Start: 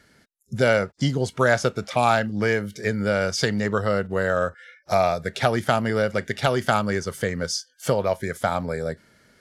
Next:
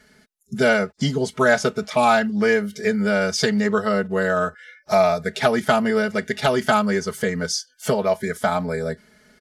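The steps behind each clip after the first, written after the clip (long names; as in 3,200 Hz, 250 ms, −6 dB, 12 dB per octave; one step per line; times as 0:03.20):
comb filter 4.7 ms, depth 90%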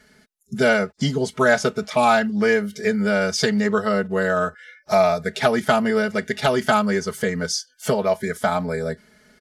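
no processing that can be heard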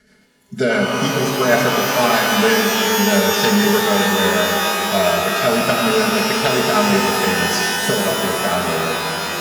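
rotating-speaker cabinet horn 6.3 Hz
reverb with rising layers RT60 3.9 s, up +12 semitones, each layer −2 dB, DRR −0.5 dB
level +1.5 dB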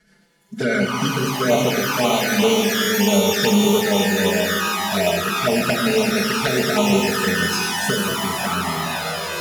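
flanger swept by the level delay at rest 6 ms, full sweep at −11 dBFS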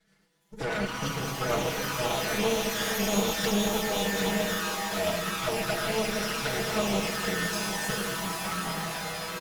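lower of the sound and its delayed copy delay 6.2 ms
on a send: single-tap delay 767 ms −9 dB
on the sum: level −8.5 dB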